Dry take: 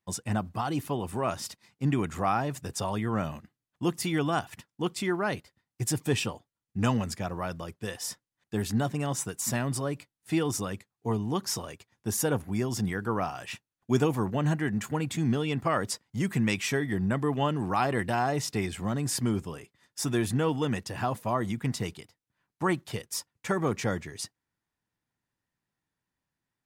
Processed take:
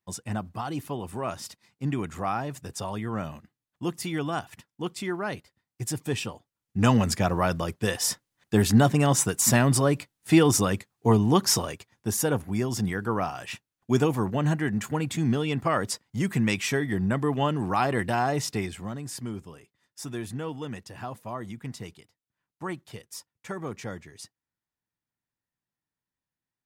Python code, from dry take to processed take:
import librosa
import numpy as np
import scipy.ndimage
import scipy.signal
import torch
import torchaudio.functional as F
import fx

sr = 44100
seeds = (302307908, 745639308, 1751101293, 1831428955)

y = fx.gain(x, sr, db=fx.line((6.32, -2.0), (7.14, 9.0), (11.54, 9.0), (12.16, 2.0), (18.49, 2.0), (19.04, -7.0)))